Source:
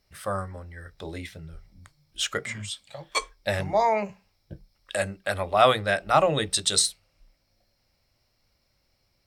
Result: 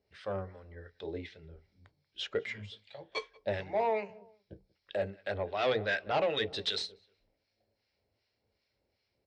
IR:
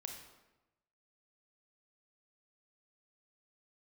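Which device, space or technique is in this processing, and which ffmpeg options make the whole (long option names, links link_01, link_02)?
guitar amplifier with harmonic tremolo: -filter_complex "[0:a]asettb=1/sr,asplit=3[link_01][link_02][link_03];[link_01]atrim=end=5.714[link_04];[link_02]atrim=start=5.71:end=6.71,asetpts=PTS-STARTPTS,afade=type=in:duration=0.004:curve=qsin,afade=type=out:start_time=0.996:duration=0.004:curve=qsin,equalizer=frequency=2200:width_type=o:width=3:gain=5.5[link_05];[link_03]atrim=start=6.706[link_06];[link_04][link_05]acrossfade=duration=0.004:curve1=hsin:curve2=qsin[link_07];[link_07][link_06]acrossfade=duration=0.004:curve1=qsin:curve2=hsin,asplit=2[link_08][link_09];[link_09]adelay=186,lowpass=frequency=1600:poles=1,volume=-24dB,asplit=2[link_10][link_11];[link_11]adelay=186,lowpass=frequency=1600:poles=1,volume=0.37[link_12];[link_08][link_10][link_12]amix=inputs=3:normalize=0,acrossover=split=1100[link_13][link_14];[link_13]aeval=exprs='val(0)*(1-0.7/2+0.7/2*cos(2*PI*2.6*n/s))':channel_layout=same[link_15];[link_14]aeval=exprs='val(0)*(1-0.7/2-0.7/2*cos(2*PI*2.6*n/s))':channel_layout=same[link_16];[link_15][link_16]amix=inputs=2:normalize=0,asoftclip=type=tanh:threshold=-20.5dB,highpass=82,equalizer=frequency=150:width_type=q:width=4:gain=-8,equalizer=frequency=430:width_type=q:width=4:gain=9,equalizer=frequency=1200:width_type=q:width=4:gain=-8,lowpass=frequency=4500:width=0.5412,lowpass=frequency=4500:width=1.3066,volume=-3.5dB"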